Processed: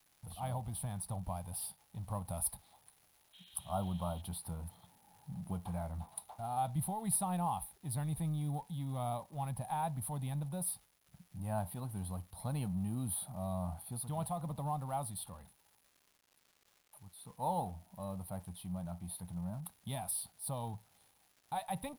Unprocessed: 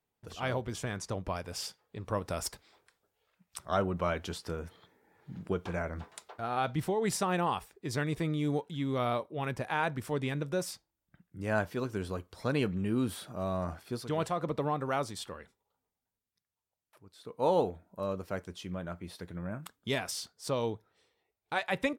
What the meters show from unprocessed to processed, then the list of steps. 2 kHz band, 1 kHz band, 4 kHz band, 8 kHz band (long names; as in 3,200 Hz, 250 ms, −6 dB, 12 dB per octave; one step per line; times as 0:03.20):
−19.5 dB, −4.0 dB, −11.5 dB, +3.0 dB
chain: mu-law and A-law mismatch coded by mu
drawn EQ curve 180 Hz 0 dB, 410 Hz −22 dB, 810 Hz +2 dB, 1,500 Hz −19 dB, 2,600 Hz −16 dB, 4,000 Hz −7 dB, 6,800 Hz −30 dB, 9,900 Hz +14 dB, 14,000 Hz +2 dB
healed spectral selection 0:03.36–0:04.18, 1,500–4,200 Hz after
surface crackle 450 per second −53 dBFS
level −3 dB